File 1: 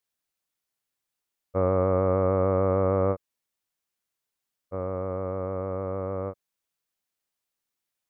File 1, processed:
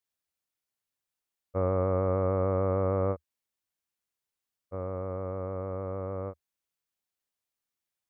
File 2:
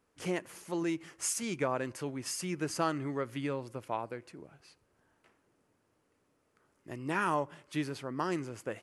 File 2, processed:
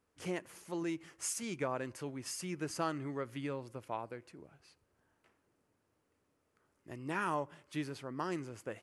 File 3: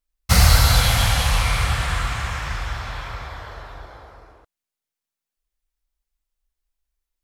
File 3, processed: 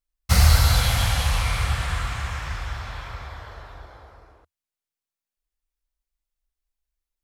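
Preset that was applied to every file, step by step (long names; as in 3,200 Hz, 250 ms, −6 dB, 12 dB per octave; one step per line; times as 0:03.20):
parametric band 78 Hz +5 dB 0.55 octaves
level −4.5 dB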